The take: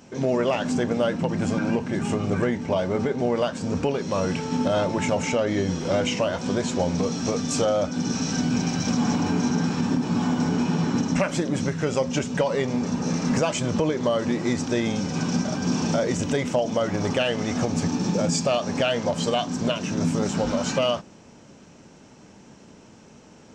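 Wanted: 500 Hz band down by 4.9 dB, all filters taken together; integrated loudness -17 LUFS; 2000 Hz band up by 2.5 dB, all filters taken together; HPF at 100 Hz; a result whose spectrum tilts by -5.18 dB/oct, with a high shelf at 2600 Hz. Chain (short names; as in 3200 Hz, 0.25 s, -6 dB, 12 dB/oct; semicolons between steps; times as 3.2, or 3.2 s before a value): HPF 100 Hz; bell 500 Hz -6 dB; bell 2000 Hz +7.5 dB; high shelf 2600 Hz -8.5 dB; gain +9.5 dB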